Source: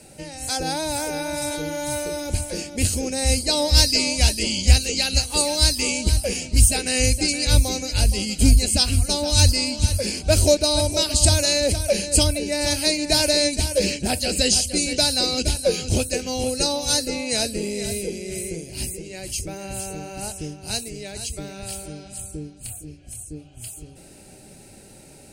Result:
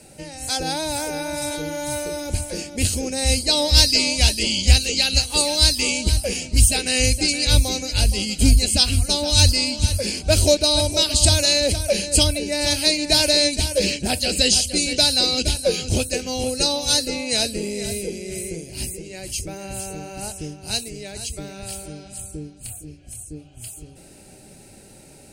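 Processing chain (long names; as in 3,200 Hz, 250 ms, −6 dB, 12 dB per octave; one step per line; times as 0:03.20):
dynamic equaliser 3,400 Hz, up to +6 dB, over −35 dBFS, Q 1.7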